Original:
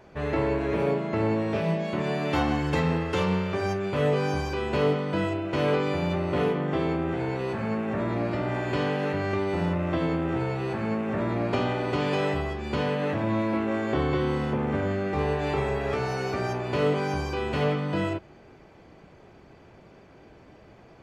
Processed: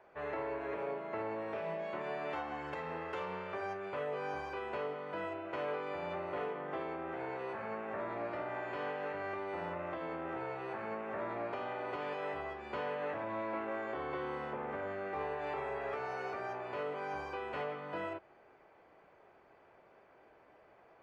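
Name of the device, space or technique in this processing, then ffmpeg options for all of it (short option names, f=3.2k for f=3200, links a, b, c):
DJ mixer with the lows and highs turned down: -filter_complex "[0:a]acrossover=split=440 2400:gain=0.126 1 0.178[a][b][c];[a][b][c]amix=inputs=3:normalize=0,alimiter=limit=-23.5dB:level=0:latency=1:release=341,volume=-5.5dB"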